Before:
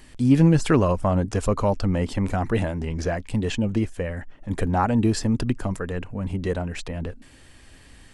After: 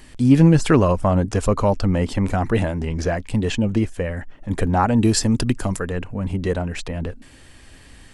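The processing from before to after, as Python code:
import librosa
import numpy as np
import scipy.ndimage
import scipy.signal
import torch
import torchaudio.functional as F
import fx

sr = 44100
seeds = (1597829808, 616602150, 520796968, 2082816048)

y = fx.high_shelf(x, sr, hz=3800.0, db=9.0, at=(5.01, 5.85))
y = F.gain(torch.from_numpy(y), 3.5).numpy()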